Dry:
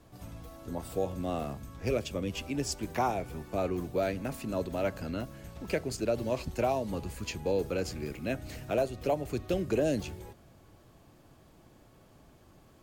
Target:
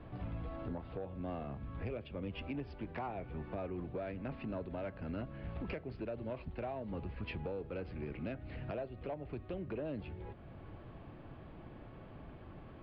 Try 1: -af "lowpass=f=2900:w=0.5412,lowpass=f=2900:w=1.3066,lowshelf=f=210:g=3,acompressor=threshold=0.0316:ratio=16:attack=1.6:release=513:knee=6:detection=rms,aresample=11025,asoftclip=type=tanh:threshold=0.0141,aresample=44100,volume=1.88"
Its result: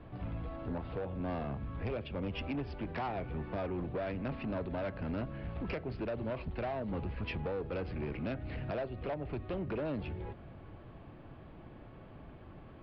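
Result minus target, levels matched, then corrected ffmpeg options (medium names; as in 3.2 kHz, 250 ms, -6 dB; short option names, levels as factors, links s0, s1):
compression: peak gain reduction -7 dB
-af "lowpass=f=2900:w=0.5412,lowpass=f=2900:w=1.3066,lowshelf=f=210:g=3,acompressor=threshold=0.0133:ratio=16:attack=1.6:release=513:knee=6:detection=rms,aresample=11025,asoftclip=type=tanh:threshold=0.0141,aresample=44100,volume=1.88"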